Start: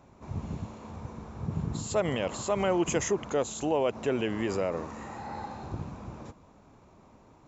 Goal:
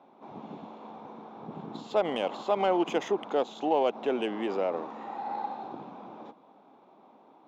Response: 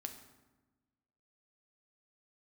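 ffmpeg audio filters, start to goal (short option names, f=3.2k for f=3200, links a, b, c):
-af "highpass=f=230:w=0.5412,highpass=f=230:w=1.3066,equalizer=f=790:t=q:w=4:g=8,equalizer=f=1.8k:t=q:w=4:g=-4,equalizer=f=3.5k:t=q:w=4:g=10,lowpass=f=6.3k:w=0.5412,lowpass=f=6.3k:w=1.3066,adynamicsmooth=sensitivity=1.5:basefreq=2.8k"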